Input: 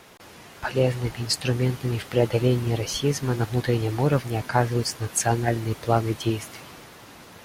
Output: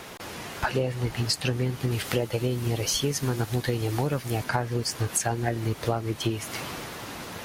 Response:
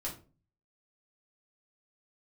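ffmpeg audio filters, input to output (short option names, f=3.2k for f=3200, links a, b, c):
-filter_complex "[0:a]asettb=1/sr,asplit=3[a][b][c];[a]atrim=end=1.914[d];[b]atrim=start=1.91:end=4.44,asetpts=PTS-STARTPTS,afade=t=in:d=0.004:c=qsin,afade=t=out:st=2.526:d=0.004:c=qsin,highshelf=f=4.6k:g=7.5[e];[c]atrim=start=4.436[f];[d][e]acrossfade=d=0.004:c1=hsin:c2=qsin[g];[g][f]acrossfade=d=0.004:c1=qsin:c2=hsin,acompressor=threshold=-31dB:ratio=10,volume=8dB"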